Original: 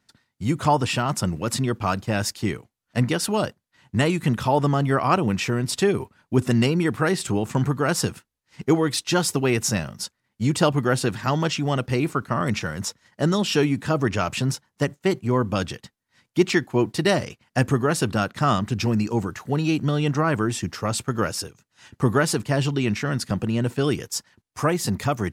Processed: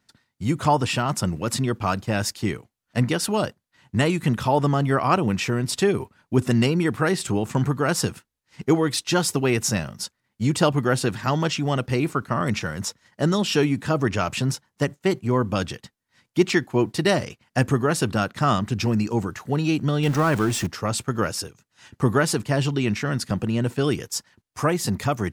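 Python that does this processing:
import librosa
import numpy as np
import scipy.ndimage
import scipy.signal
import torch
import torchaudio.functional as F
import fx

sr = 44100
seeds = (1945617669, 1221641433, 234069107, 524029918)

y = fx.zero_step(x, sr, step_db=-28.5, at=(20.03, 20.67))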